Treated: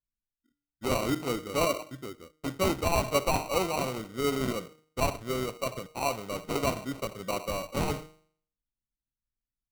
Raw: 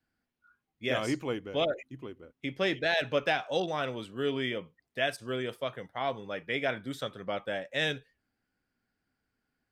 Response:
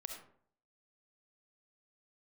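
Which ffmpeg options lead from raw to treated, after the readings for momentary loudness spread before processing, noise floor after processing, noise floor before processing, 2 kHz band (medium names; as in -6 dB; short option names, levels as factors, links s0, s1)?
11 LU, under -85 dBFS, -84 dBFS, -4.5 dB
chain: -filter_complex "[0:a]asplit=2[s0][s1];[1:a]atrim=start_sample=2205,lowpass=4000[s2];[s1][s2]afir=irnorm=-1:irlink=0,volume=0.501[s3];[s0][s3]amix=inputs=2:normalize=0,anlmdn=0.01,bandreject=f=156.4:t=h:w=4,bandreject=f=312.8:t=h:w=4,bandreject=f=469.2:t=h:w=4,bandreject=f=625.6:t=h:w=4,bandreject=f=782:t=h:w=4,bandreject=f=938.4:t=h:w=4,bandreject=f=1094.8:t=h:w=4,bandreject=f=1251.2:t=h:w=4,bandreject=f=1407.6:t=h:w=4,bandreject=f=1564:t=h:w=4,bandreject=f=1720.4:t=h:w=4,bandreject=f=1876.8:t=h:w=4,bandreject=f=2033.2:t=h:w=4,bandreject=f=2189.6:t=h:w=4,bandreject=f=2346:t=h:w=4,bandreject=f=2502.4:t=h:w=4,bandreject=f=2658.8:t=h:w=4,bandreject=f=2815.2:t=h:w=4,bandreject=f=2971.6:t=h:w=4,bandreject=f=3128:t=h:w=4,bandreject=f=3284.4:t=h:w=4,bandreject=f=3440.8:t=h:w=4,bandreject=f=3597.2:t=h:w=4,bandreject=f=3753.6:t=h:w=4,bandreject=f=3910:t=h:w=4,bandreject=f=4066.4:t=h:w=4,bandreject=f=4222.8:t=h:w=4,bandreject=f=4379.2:t=h:w=4,acrusher=samples=26:mix=1:aa=0.000001"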